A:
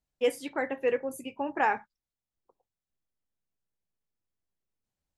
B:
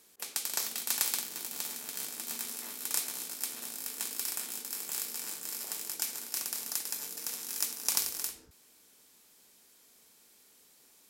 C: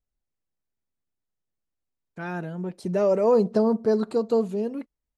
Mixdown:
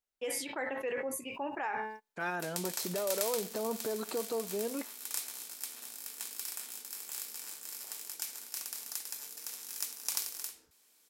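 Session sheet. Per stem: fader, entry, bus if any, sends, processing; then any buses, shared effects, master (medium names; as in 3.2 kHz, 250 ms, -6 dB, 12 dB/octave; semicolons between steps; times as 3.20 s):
-5.0 dB, 0.00 s, bus A, no send, de-hum 217 Hz, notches 25; gate -51 dBFS, range -54 dB; decay stretcher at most 76 dB/s
-5.0 dB, 2.20 s, no bus, no send, none
+1.0 dB, 0.00 s, bus A, no send, bass shelf 200 Hz -11.5 dB; compression, threshold -31 dBFS, peak gain reduction 13 dB
bus A: 0.0 dB, level rider gain up to 4.5 dB; peak limiter -24.5 dBFS, peak gain reduction 11 dB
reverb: none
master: bass shelf 320 Hz -10.5 dB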